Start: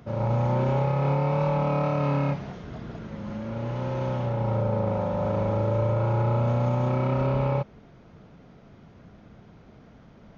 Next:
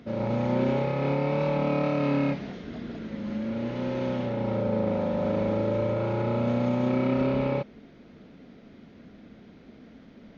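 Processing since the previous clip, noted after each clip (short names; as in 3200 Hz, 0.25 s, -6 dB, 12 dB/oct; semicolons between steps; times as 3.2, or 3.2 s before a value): ten-band EQ 125 Hz -5 dB, 250 Hz +12 dB, 500 Hz +4 dB, 1000 Hz -3 dB, 2000 Hz +7 dB, 4000 Hz +8 dB; gain -5 dB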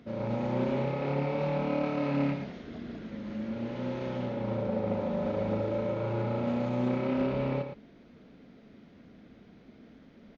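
echo 0.113 s -7.5 dB; Doppler distortion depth 0.14 ms; gain -5 dB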